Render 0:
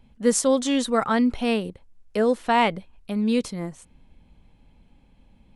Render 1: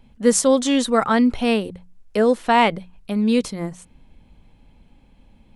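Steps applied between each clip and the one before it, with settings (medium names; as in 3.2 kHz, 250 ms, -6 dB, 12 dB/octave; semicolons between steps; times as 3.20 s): hum notches 60/120/180 Hz; trim +4 dB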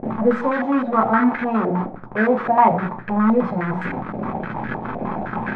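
one-bit delta coder 64 kbps, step -15 dBFS; reverberation RT60 0.50 s, pre-delay 3 ms, DRR 1 dB; step-sequenced low-pass 9.7 Hz 640–1600 Hz; trim -13 dB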